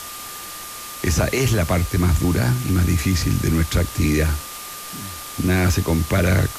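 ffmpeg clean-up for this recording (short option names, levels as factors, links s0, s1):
-af "adeclick=t=4,bandreject=f=1200:w=30,afftdn=nr=30:nf=-34"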